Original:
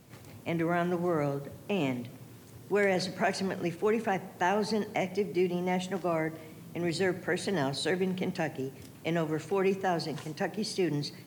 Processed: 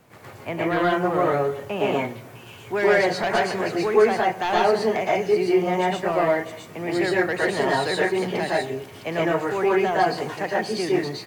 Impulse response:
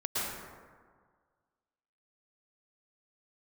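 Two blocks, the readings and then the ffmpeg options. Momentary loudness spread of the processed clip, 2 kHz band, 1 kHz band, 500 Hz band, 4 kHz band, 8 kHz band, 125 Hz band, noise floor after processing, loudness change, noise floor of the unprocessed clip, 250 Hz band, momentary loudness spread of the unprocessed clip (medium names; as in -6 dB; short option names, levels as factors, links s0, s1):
10 LU, +10.0 dB, +11.0 dB, +10.0 dB, +7.0 dB, +4.0 dB, +2.0 dB, -43 dBFS, +8.5 dB, -51 dBFS, +5.5 dB, 10 LU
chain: -filter_complex "[0:a]acrossover=split=500|2300[s0][s1][s2];[s1]aeval=exprs='0.112*sin(PI/2*2*val(0)/0.112)':c=same[s3];[s2]aecho=1:1:659:0.631[s4];[s0][s3][s4]amix=inputs=3:normalize=0[s5];[1:a]atrim=start_sample=2205,afade=t=out:st=0.2:d=0.01,atrim=end_sample=9261[s6];[s5][s6]afir=irnorm=-1:irlink=0"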